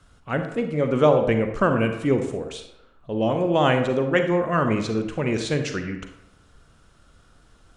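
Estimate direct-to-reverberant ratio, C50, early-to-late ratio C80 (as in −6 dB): 6.0 dB, 7.0 dB, 9.5 dB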